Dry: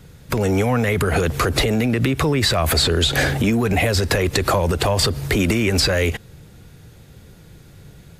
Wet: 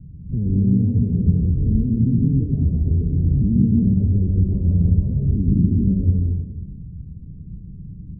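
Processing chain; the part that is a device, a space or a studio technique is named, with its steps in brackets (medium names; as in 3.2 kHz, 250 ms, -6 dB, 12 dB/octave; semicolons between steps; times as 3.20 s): club heard from the street (peak limiter -15 dBFS, peak gain reduction 9.5 dB; low-pass 220 Hz 24 dB/octave; reverberation RT60 1.3 s, pre-delay 117 ms, DRR -2.5 dB); 4.30–5.37 s: treble shelf 2.4 kHz +12 dB; trim +5.5 dB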